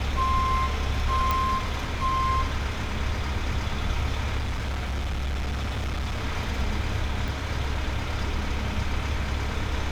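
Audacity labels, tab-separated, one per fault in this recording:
1.310000	1.310000	click −10 dBFS
4.380000	6.240000	clipping −25 dBFS
7.280000	7.280000	click

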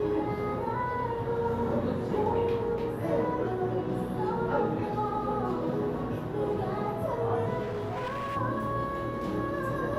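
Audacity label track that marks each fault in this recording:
7.620000	8.370000	clipping −30.5 dBFS

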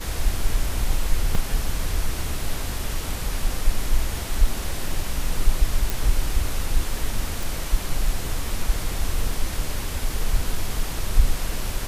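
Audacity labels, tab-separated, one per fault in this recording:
1.350000	1.350000	drop-out 3.1 ms
5.900000	5.900000	click
7.430000	7.430000	click

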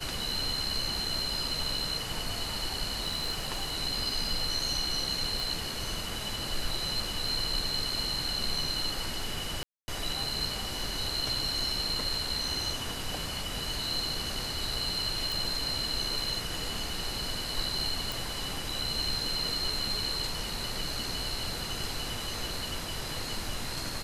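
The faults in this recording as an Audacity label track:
3.000000	3.700000	clipping −26.5 dBFS
5.400000	5.400000	click
9.630000	9.880000	drop-out 250 ms
15.320000	15.320000	click
18.120000	18.120000	click

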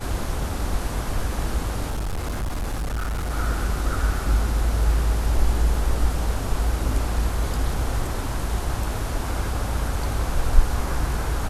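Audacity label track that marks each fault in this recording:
1.900000	3.310000	clipping −23 dBFS

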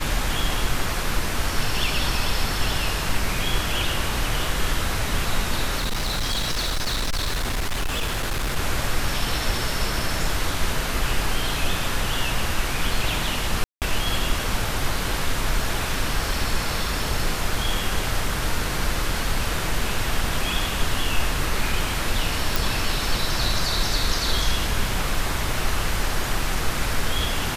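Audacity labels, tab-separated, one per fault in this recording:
5.780000	8.570000	clipping −20.5 dBFS
13.640000	13.820000	drop-out 178 ms
22.560000	22.560000	click

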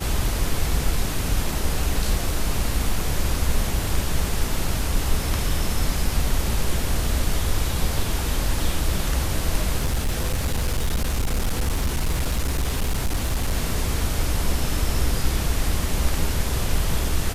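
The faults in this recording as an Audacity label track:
9.790000	13.550000	clipping −18 dBFS

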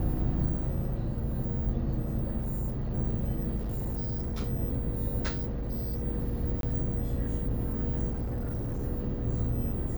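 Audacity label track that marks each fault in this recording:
2.390000	2.910000	clipping −28 dBFS
3.560000	4.410000	clipping −29 dBFS
5.280000	6.040000	clipping −28.5 dBFS
6.610000	6.630000	drop-out 22 ms
8.110000	8.840000	clipping −29 dBFS

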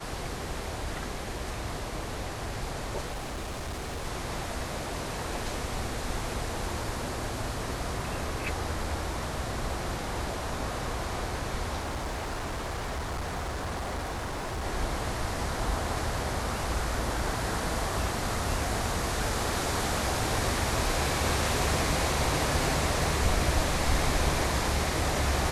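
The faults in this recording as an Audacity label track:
3.110000	4.060000	clipping −31.5 dBFS
11.800000	14.650000	clipping −29.5 dBFS

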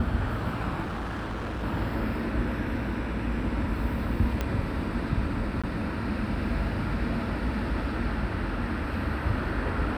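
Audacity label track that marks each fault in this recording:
0.830000	1.640000	clipping −29.5 dBFS
4.410000	4.410000	click −14 dBFS
5.620000	5.640000	drop-out 16 ms

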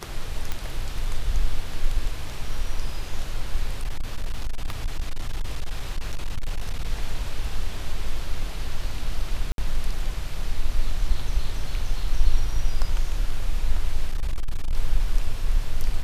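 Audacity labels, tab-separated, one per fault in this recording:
0.520000	0.520000	click −13 dBFS
3.790000	6.850000	clipping −20.5 dBFS
9.520000	9.580000	drop-out 62 ms
14.080000	14.750000	clipping −19 dBFS

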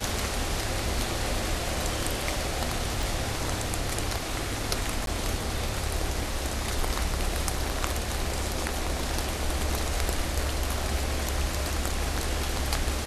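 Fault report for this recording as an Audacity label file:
3.030000	3.030000	click
5.060000	5.070000	drop-out 12 ms

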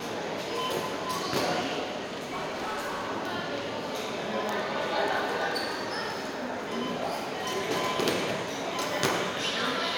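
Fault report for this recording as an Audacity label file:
2.030000	3.050000	clipping −29.5 dBFS

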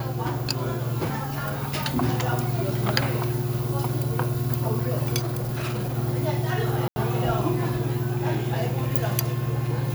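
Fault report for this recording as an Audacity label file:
5.190000	5.980000	clipping −24.5 dBFS
6.880000	6.960000	drop-out 80 ms

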